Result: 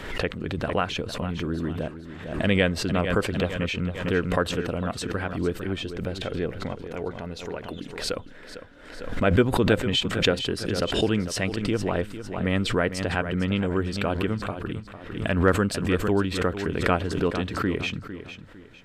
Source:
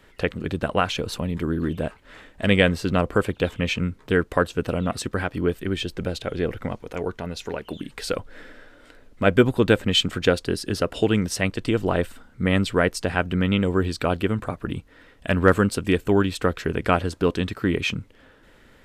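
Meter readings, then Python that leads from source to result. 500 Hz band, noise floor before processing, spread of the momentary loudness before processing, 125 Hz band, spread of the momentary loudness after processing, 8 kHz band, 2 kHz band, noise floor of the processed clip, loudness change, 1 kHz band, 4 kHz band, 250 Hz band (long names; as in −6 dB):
−3.0 dB, −53 dBFS, 12 LU, −2.0 dB, 13 LU, −2.0 dB, −2.5 dB, −44 dBFS, −2.5 dB, −2.5 dB, −1.5 dB, −2.5 dB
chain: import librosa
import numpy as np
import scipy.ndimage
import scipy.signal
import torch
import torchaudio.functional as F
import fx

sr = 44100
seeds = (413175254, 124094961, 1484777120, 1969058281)

p1 = fx.high_shelf(x, sr, hz=8500.0, db=-9.0)
p2 = p1 + fx.echo_feedback(p1, sr, ms=453, feedback_pct=32, wet_db=-12, dry=0)
p3 = fx.pre_swell(p2, sr, db_per_s=65.0)
y = F.gain(torch.from_numpy(p3), -4.0).numpy()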